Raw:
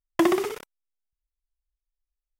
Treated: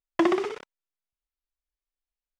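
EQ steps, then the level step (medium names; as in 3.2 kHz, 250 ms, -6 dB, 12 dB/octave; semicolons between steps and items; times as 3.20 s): distance through air 110 m; bass shelf 130 Hz -10.5 dB; 0.0 dB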